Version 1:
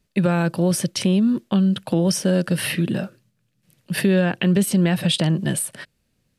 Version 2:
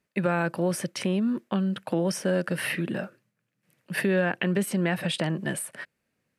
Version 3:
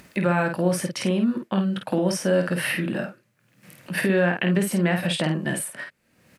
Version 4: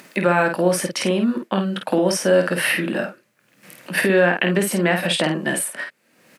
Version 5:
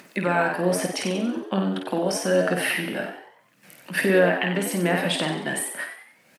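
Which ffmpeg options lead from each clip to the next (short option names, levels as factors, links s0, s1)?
-af "highpass=f=370:p=1,highshelf=f=2700:t=q:w=1.5:g=-6.5,volume=0.794"
-filter_complex "[0:a]bandreject=f=430:w=12,acompressor=mode=upward:threshold=0.0178:ratio=2.5,asplit=2[s0][s1];[s1]aecho=0:1:22|51:0.237|0.531[s2];[s0][s2]amix=inputs=2:normalize=0,volume=1.33"
-af "highpass=250,volume=2"
-filter_complex "[0:a]aphaser=in_gain=1:out_gain=1:delay=1.4:decay=0.32:speed=1.2:type=sinusoidal,asplit=2[s0][s1];[s1]asplit=5[s2][s3][s4][s5][s6];[s2]adelay=93,afreqshift=91,volume=0.355[s7];[s3]adelay=186,afreqshift=182,volume=0.153[s8];[s4]adelay=279,afreqshift=273,volume=0.0653[s9];[s5]adelay=372,afreqshift=364,volume=0.0282[s10];[s6]adelay=465,afreqshift=455,volume=0.0122[s11];[s7][s8][s9][s10][s11]amix=inputs=5:normalize=0[s12];[s0][s12]amix=inputs=2:normalize=0,volume=0.531"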